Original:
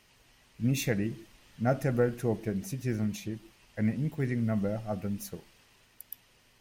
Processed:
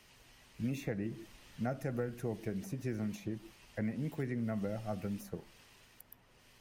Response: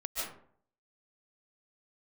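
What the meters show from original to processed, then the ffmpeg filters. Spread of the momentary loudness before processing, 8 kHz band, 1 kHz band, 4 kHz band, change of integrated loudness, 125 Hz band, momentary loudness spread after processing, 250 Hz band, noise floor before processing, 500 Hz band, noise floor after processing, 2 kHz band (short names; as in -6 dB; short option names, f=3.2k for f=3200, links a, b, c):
17 LU, -11.5 dB, -7.5 dB, -10.0 dB, -8.0 dB, -8.0 dB, 20 LU, -6.5 dB, -64 dBFS, -8.0 dB, -65 dBFS, -8.0 dB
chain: -filter_complex "[0:a]acrossover=split=240|1700[a][b][c];[a]acompressor=threshold=-42dB:ratio=4[d];[b]acompressor=threshold=-39dB:ratio=4[e];[c]acompressor=threshold=-56dB:ratio=4[f];[d][e][f]amix=inputs=3:normalize=0,volume=1dB"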